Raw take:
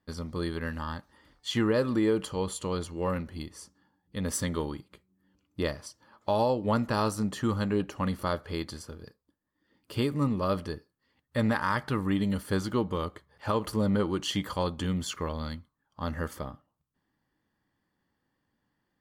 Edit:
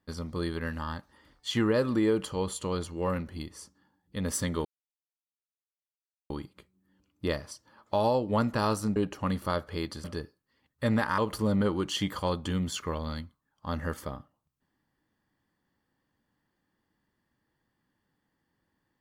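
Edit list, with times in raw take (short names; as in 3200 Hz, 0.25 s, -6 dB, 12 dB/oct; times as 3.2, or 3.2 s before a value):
4.65 insert silence 1.65 s
7.31–7.73 cut
8.81–10.57 cut
11.71–13.52 cut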